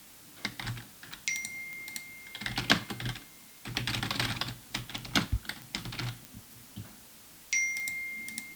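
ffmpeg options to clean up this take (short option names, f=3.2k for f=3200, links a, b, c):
-af "adeclick=t=4,afftdn=nr=27:nf=-53"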